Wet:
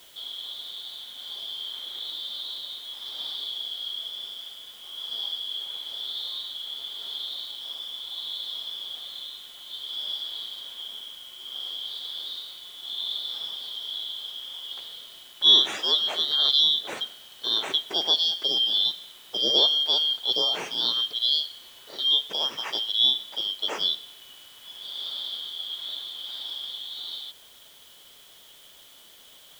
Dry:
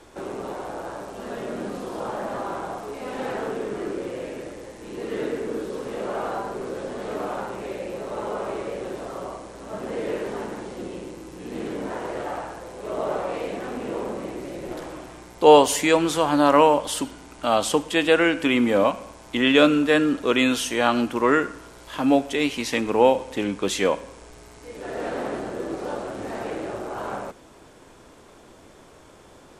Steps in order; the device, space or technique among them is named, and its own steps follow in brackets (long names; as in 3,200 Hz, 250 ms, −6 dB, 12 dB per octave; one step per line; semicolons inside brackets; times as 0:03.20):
split-band scrambled radio (band-splitting scrambler in four parts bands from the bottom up 3412; band-pass filter 360–2,900 Hz; white noise bed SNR 25 dB)